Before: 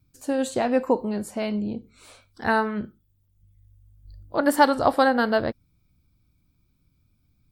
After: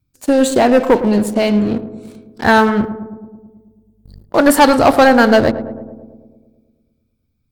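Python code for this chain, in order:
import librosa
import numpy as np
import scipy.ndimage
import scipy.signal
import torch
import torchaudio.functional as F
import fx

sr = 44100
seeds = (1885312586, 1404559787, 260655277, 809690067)

p1 = fx.leveller(x, sr, passes=3)
p2 = p1 + fx.echo_filtered(p1, sr, ms=109, feedback_pct=70, hz=1100.0, wet_db=-11.5, dry=0)
y = p2 * 10.0 ** (2.0 / 20.0)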